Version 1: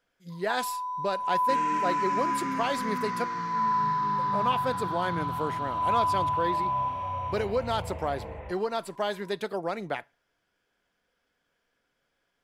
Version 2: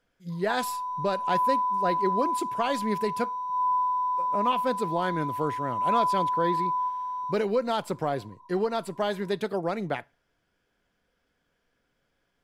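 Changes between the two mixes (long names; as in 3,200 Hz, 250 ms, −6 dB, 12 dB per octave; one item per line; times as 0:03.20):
second sound: muted
master: add low-shelf EQ 310 Hz +8.5 dB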